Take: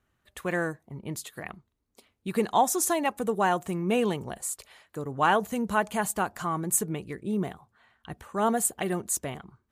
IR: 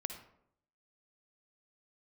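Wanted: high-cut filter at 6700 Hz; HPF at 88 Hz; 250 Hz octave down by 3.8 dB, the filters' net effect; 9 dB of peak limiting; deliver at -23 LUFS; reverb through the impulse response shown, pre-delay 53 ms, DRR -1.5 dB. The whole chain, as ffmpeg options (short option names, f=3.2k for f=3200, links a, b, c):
-filter_complex "[0:a]highpass=88,lowpass=6.7k,equalizer=f=250:t=o:g=-5,alimiter=limit=-19dB:level=0:latency=1,asplit=2[a][b];[1:a]atrim=start_sample=2205,adelay=53[c];[b][c]afir=irnorm=-1:irlink=0,volume=2dB[d];[a][d]amix=inputs=2:normalize=0,volume=5.5dB"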